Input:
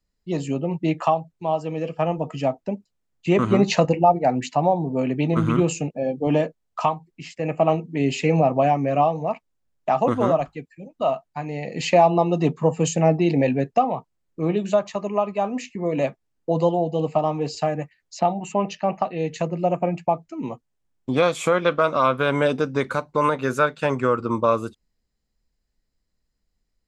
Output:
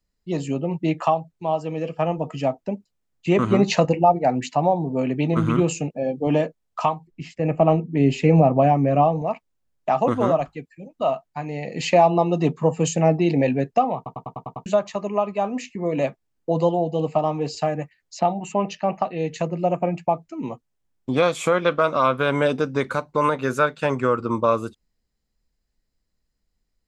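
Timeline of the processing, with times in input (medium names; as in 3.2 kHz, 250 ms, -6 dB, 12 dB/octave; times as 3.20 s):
7.07–9.22 s: tilt EQ -2 dB/octave
13.96 s: stutter in place 0.10 s, 7 plays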